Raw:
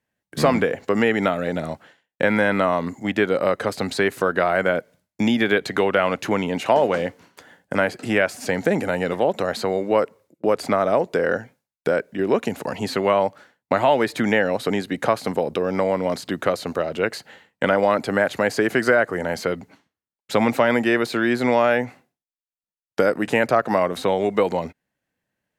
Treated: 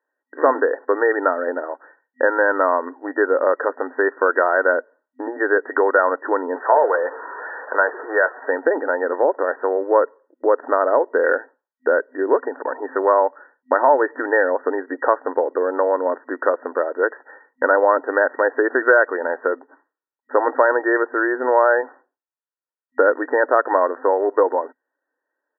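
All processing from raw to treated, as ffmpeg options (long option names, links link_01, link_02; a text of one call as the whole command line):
ffmpeg -i in.wav -filter_complex "[0:a]asettb=1/sr,asplit=3[link_01][link_02][link_03];[link_01]atrim=end=6.564[link_04];[link_02]atrim=start=6.56:end=8.49,asetpts=PTS-STARTPTS,afade=type=in:duration=0.004:curve=qsin,afade=type=out:start_time=1.926:duration=0.004:curve=qsin,aeval=exprs='val(0)+0.5*0.0376*sgn(val(0))':channel_layout=same,highpass=frequency=390:width=0.5412,highpass=frequency=390:width=1.3066,bandreject=frequency=560:width=14[link_05];[link_03]atrim=start=8.486[link_06];[link_04][link_05]acrossfade=duration=0.004:curve1=hsin:curve2=qsin[link_07];[link_07][link_06]acrossfade=duration=0.004:curve1=qsin:curve2=hsin,afftfilt=real='re*between(b*sr/4096,250,1900)':imag='im*between(b*sr/4096,250,1900)':win_size=4096:overlap=0.75,equalizer=frequency=1200:width_type=o:width=1.6:gain=5,aecho=1:1:2.1:0.32" out.wav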